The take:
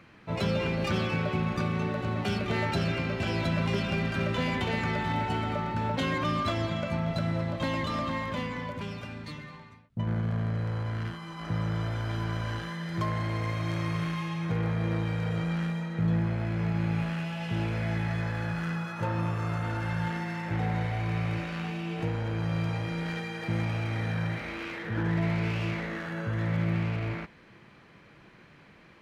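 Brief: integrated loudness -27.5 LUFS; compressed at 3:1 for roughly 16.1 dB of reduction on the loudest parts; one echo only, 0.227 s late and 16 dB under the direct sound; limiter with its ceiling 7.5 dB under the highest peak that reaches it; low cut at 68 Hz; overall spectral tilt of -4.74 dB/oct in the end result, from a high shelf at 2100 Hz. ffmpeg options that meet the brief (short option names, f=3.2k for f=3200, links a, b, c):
-af "highpass=68,highshelf=f=2.1k:g=6.5,acompressor=threshold=-47dB:ratio=3,alimiter=level_in=14.5dB:limit=-24dB:level=0:latency=1,volume=-14.5dB,aecho=1:1:227:0.158,volume=19.5dB"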